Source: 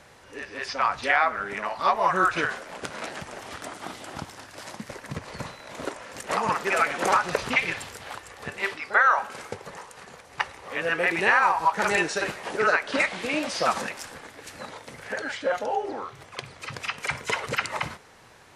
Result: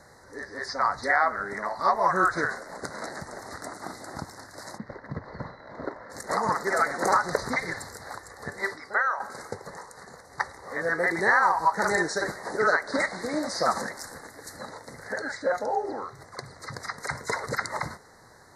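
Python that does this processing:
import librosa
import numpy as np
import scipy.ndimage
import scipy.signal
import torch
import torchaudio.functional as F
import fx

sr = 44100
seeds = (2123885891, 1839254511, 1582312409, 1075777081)

y = fx.air_absorb(x, sr, metres=320.0, at=(4.77, 6.09), fade=0.02)
y = fx.high_shelf(y, sr, hz=11000.0, db=10.0, at=(14.03, 14.57))
y = fx.edit(y, sr, fx.fade_out_to(start_s=8.67, length_s=0.53, floor_db=-9.5), tone=tone)
y = scipy.signal.sosfilt(scipy.signal.ellip(3, 1.0, 40, [2000.0, 4000.0], 'bandstop', fs=sr, output='sos'), y)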